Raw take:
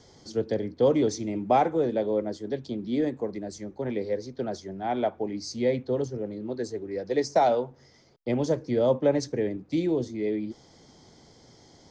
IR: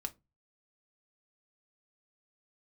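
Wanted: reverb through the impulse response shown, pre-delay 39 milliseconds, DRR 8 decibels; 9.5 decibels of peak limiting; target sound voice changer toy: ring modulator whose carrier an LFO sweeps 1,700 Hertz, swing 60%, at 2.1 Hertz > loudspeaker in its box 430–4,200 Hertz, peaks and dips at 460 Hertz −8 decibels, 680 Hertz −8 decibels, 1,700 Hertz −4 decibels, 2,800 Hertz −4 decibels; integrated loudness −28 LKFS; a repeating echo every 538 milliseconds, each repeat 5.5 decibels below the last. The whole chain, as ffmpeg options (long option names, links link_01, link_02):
-filter_complex "[0:a]alimiter=limit=-20dB:level=0:latency=1,aecho=1:1:538|1076|1614|2152|2690|3228|3766:0.531|0.281|0.149|0.079|0.0419|0.0222|0.0118,asplit=2[link_01][link_02];[1:a]atrim=start_sample=2205,adelay=39[link_03];[link_02][link_03]afir=irnorm=-1:irlink=0,volume=-7dB[link_04];[link_01][link_04]amix=inputs=2:normalize=0,aeval=exprs='val(0)*sin(2*PI*1700*n/s+1700*0.6/2.1*sin(2*PI*2.1*n/s))':channel_layout=same,highpass=430,equalizer=frequency=460:width_type=q:width=4:gain=-8,equalizer=frequency=680:width_type=q:width=4:gain=-8,equalizer=frequency=1700:width_type=q:width=4:gain=-4,equalizer=frequency=2800:width_type=q:width=4:gain=-4,lowpass=frequency=4200:width=0.5412,lowpass=frequency=4200:width=1.3066,volume=5dB"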